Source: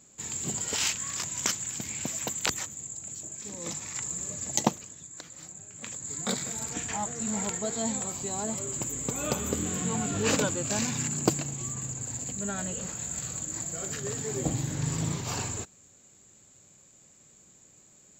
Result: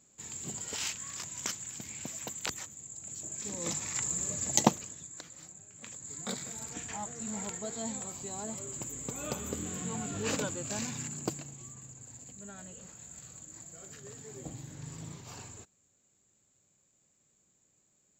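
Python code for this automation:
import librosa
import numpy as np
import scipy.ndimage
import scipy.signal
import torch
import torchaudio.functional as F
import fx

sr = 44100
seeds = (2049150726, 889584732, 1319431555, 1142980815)

y = fx.gain(x, sr, db=fx.line((2.84, -7.5), (3.4, 1.0), (4.86, 1.0), (5.63, -7.0), (10.86, -7.0), (11.83, -14.0)))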